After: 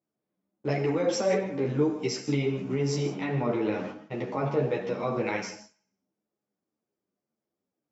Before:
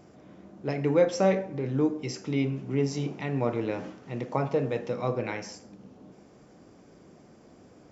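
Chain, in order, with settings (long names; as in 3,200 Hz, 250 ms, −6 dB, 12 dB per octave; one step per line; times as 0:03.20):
noise gate −40 dBFS, range −37 dB
high-pass filter 87 Hz
low-shelf EQ 170 Hz −3.5 dB
brickwall limiter −21.5 dBFS, peak gain reduction 10.5 dB
0:02.95–0:05.11: high-frequency loss of the air 88 metres
feedback echo with a high-pass in the loop 65 ms, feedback 51%, high-pass 340 Hz, level −21 dB
reverb whose tail is shaped and stops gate 190 ms flat, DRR 8 dB
string-ensemble chorus
level +7 dB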